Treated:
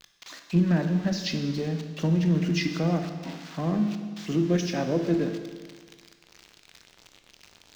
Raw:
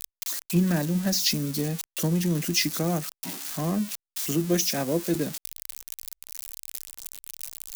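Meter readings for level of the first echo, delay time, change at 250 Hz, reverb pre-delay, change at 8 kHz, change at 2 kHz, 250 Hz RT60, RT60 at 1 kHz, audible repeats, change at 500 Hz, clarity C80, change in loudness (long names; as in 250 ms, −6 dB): no echo audible, no echo audible, +1.5 dB, 18 ms, −14.5 dB, −1.0 dB, 1.5 s, 1.6 s, no echo audible, +0.5 dB, 8.5 dB, +0.5 dB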